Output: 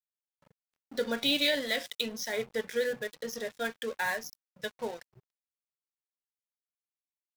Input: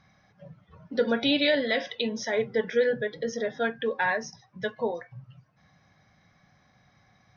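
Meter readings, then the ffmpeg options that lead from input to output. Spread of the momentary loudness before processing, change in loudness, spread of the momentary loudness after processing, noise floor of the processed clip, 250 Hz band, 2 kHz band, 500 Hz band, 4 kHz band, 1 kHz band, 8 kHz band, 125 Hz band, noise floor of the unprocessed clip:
12 LU, −4.5 dB, 13 LU, below −85 dBFS, −7.5 dB, −4.0 dB, −7.0 dB, 0.0 dB, −6.5 dB, can't be measured, −10.5 dB, −64 dBFS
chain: -af "aeval=exprs='sgn(val(0))*max(abs(val(0))-0.00794,0)':channel_layout=same,crystalizer=i=3.5:c=0,volume=-6.5dB"

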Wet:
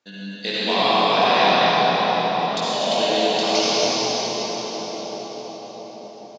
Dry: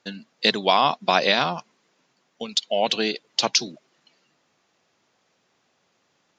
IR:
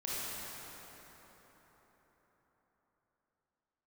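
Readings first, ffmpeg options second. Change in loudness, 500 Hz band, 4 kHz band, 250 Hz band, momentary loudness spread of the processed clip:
+2.0 dB, +6.0 dB, +3.5 dB, +5.5 dB, 19 LU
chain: -filter_complex "[0:a]highpass=79,flanger=delay=19.5:depth=4.9:speed=0.39,aecho=1:1:189.5|247.8:0.316|0.562[link_01];[1:a]atrim=start_sample=2205,asetrate=24255,aresample=44100[link_02];[link_01][link_02]afir=irnorm=-1:irlink=0,volume=-3dB"

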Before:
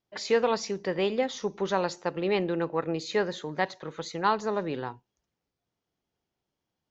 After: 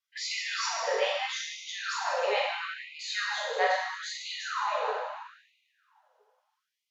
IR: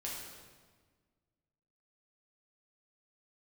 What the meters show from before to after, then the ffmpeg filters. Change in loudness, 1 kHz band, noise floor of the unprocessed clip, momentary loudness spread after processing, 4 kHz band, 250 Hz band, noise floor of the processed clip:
−1.5 dB, 0.0 dB, below −85 dBFS, 8 LU, +5.0 dB, below −25 dB, −85 dBFS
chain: -filter_complex "[0:a]highpass=frequency=300:width=0.5412,highpass=frequency=300:width=1.3066[link_01];[1:a]atrim=start_sample=2205,asetrate=30429,aresample=44100[link_02];[link_01][link_02]afir=irnorm=-1:irlink=0,afftfilt=real='re*gte(b*sr/1024,420*pow(2000/420,0.5+0.5*sin(2*PI*0.76*pts/sr)))':imag='im*gte(b*sr/1024,420*pow(2000/420,0.5+0.5*sin(2*PI*0.76*pts/sr)))':win_size=1024:overlap=0.75,volume=2dB"

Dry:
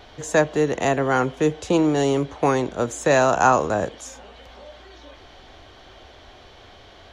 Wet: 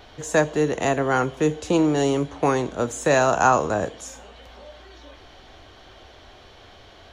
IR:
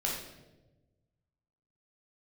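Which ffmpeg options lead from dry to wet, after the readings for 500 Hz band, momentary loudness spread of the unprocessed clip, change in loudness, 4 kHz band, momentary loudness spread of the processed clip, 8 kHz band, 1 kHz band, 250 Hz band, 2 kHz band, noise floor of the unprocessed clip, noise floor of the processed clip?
−1.0 dB, 8 LU, −1.0 dB, −0.5 dB, 8 LU, +0.5 dB, −1.0 dB, −0.5 dB, −0.5 dB, −47 dBFS, −48 dBFS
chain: -filter_complex "[0:a]asplit=2[link_01][link_02];[link_02]highshelf=frequency=6100:gain=10.5[link_03];[1:a]atrim=start_sample=2205,asetrate=79380,aresample=44100,highshelf=frequency=5600:gain=8.5[link_04];[link_03][link_04]afir=irnorm=-1:irlink=0,volume=-17.5dB[link_05];[link_01][link_05]amix=inputs=2:normalize=0,volume=-1.5dB"

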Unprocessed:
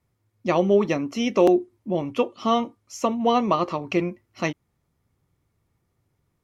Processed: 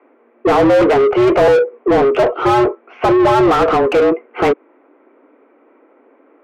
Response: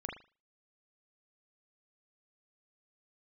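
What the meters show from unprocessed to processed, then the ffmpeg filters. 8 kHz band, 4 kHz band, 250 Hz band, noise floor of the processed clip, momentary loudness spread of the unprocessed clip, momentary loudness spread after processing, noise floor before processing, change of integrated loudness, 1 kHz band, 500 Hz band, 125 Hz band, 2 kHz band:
can't be measured, +6.0 dB, +7.5 dB, −53 dBFS, 10 LU, 7 LU, −74 dBFS, +10.0 dB, +10.5 dB, +11.5 dB, +7.0 dB, +12.5 dB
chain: -filter_complex "[0:a]highpass=frequency=180:width_type=q:width=0.5412,highpass=frequency=180:width_type=q:width=1.307,lowpass=frequency=2500:width_type=q:width=0.5176,lowpass=frequency=2500:width_type=q:width=0.7071,lowpass=frequency=2500:width_type=q:width=1.932,afreqshift=130,lowshelf=frequency=430:gain=10.5,asplit=2[link_01][link_02];[link_02]highpass=frequency=720:poles=1,volume=35dB,asoftclip=type=tanh:threshold=-3.5dB[link_03];[link_01][link_03]amix=inputs=2:normalize=0,lowpass=frequency=1000:poles=1,volume=-6dB"

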